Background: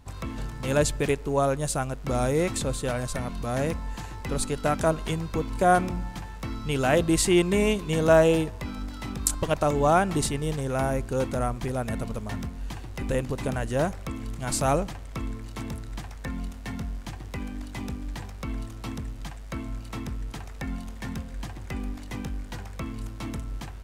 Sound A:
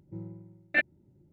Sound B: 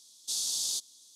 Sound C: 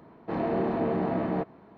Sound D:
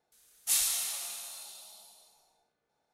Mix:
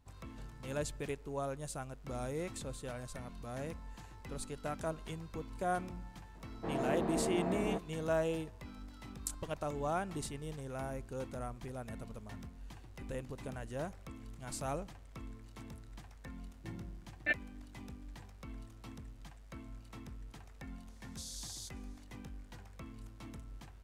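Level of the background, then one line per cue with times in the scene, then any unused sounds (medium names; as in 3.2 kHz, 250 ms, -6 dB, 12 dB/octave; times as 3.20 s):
background -15 dB
6.35 s: add C -8 dB
16.52 s: add A -7.5 dB
20.89 s: add B -15 dB
not used: D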